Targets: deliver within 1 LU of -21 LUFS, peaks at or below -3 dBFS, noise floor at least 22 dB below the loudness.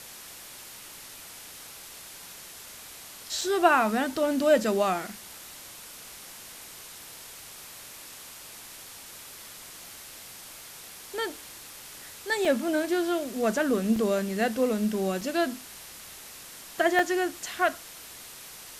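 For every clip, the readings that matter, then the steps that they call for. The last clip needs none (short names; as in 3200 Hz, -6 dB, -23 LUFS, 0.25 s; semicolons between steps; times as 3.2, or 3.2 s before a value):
dropouts 5; longest dropout 3.3 ms; noise floor -45 dBFS; noise floor target -49 dBFS; loudness -26.5 LUFS; peak -7.5 dBFS; loudness target -21.0 LUFS
-> interpolate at 3.41/12.45/13.96/15.21/16.99, 3.3 ms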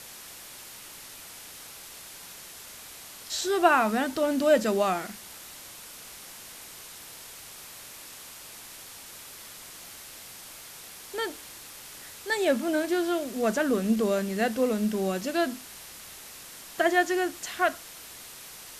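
dropouts 0; noise floor -45 dBFS; noise floor target -49 dBFS
-> denoiser 6 dB, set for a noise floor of -45 dBFS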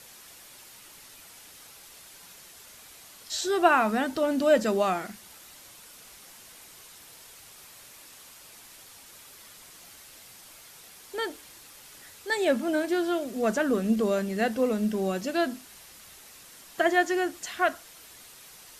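noise floor -50 dBFS; loudness -26.5 LUFS; peak -7.5 dBFS; loudness target -21.0 LUFS
-> gain +5.5 dB; limiter -3 dBFS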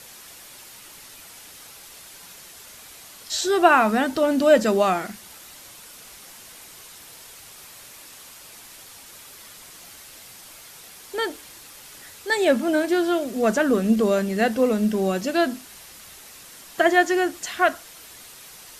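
loudness -21.0 LUFS; peak -3.0 dBFS; noise floor -45 dBFS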